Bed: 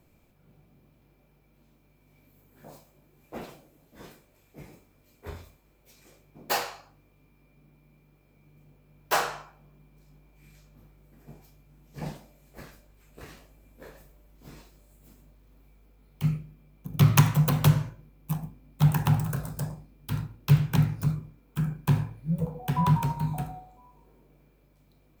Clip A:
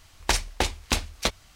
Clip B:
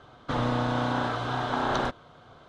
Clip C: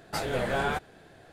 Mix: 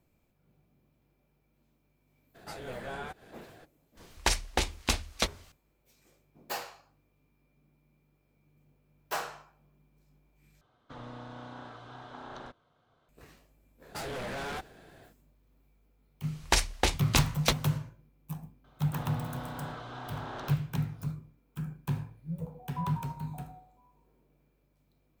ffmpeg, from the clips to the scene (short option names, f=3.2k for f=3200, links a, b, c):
-filter_complex "[3:a]asplit=2[a][b];[1:a]asplit=2[c][d];[2:a]asplit=2[e][f];[0:a]volume=-9dB[g];[a]acompressor=mode=upward:threshold=-31dB:ratio=2.5:attack=3.2:release=140:knee=2.83:detection=peak[h];[b]asoftclip=type=hard:threshold=-34dB[i];[f]asoftclip=type=tanh:threshold=-23dB[j];[g]asplit=2[k][l];[k]atrim=end=10.614[m];[e]atrim=end=2.48,asetpts=PTS-STARTPTS,volume=-18dB[n];[l]atrim=start=13.086[o];[h]atrim=end=1.32,asetpts=PTS-STARTPTS,volume=-11.5dB,afade=t=in:d=0.02,afade=t=out:st=1.3:d=0.02,adelay=2340[p];[c]atrim=end=1.55,asetpts=PTS-STARTPTS,volume=-3.5dB,afade=t=in:d=0.004:c=hsin,afade=t=out:st=1.546:d=0.004:c=hsin,adelay=175077S[q];[i]atrim=end=1.32,asetpts=PTS-STARTPTS,volume=-1.5dB,afade=t=in:d=0.1,afade=t=out:st=1.22:d=0.1,adelay=13820[r];[d]atrim=end=1.55,asetpts=PTS-STARTPTS,volume=-1.5dB,afade=t=in:d=0.004:c=hsin,afade=t=out:st=1.546:d=0.004:c=hsin,adelay=16230[s];[j]atrim=end=2.48,asetpts=PTS-STARTPTS,volume=-11.5dB,afade=t=in:d=0.004:c=hsin,afade=t=out:st=2.476:d=0.004:c=hsin,adelay=18640[t];[m][n]acrossfade=d=0.004:c1=hsin:c2=hsin[u];[u][o]acrossfade=d=0.004:c1=hsin:c2=hsin[v];[v][p][q][r][s][t]amix=inputs=6:normalize=0"